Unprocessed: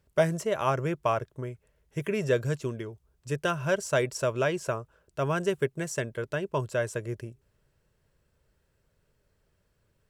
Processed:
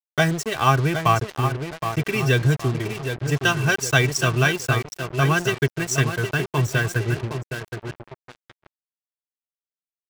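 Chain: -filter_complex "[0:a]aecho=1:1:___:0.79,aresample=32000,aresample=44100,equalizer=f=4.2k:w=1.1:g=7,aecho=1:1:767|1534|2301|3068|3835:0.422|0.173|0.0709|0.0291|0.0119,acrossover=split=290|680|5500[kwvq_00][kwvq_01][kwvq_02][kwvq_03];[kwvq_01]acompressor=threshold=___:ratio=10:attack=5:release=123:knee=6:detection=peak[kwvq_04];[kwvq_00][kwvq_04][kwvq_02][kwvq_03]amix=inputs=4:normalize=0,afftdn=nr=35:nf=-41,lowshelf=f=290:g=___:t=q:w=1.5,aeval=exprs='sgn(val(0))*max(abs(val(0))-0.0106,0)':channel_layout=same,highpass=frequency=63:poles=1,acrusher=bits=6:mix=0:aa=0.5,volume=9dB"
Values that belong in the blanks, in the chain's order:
2.6, -41dB, 6.5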